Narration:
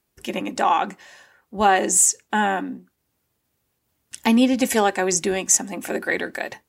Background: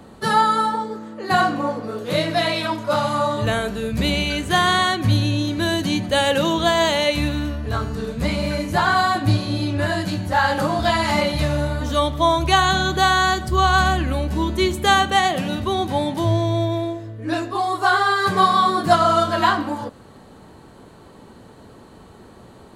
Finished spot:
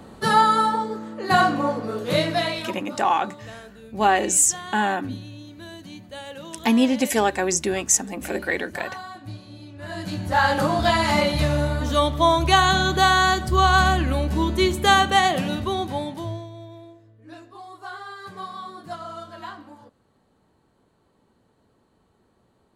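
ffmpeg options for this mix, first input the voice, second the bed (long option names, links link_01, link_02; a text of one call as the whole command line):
ffmpeg -i stem1.wav -i stem2.wav -filter_complex "[0:a]adelay=2400,volume=-1.5dB[link_01];[1:a]volume=18.5dB,afade=type=out:start_time=2.15:duration=0.73:silence=0.112202,afade=type=in:start_time=9.79:duration=0.64:silence=0.11885,afade=type=out:start_time=15.36:duration=1.14:silence=0.112202[link_02];[link_01][link_02]amix=inputs=2:normalize=0" out.wav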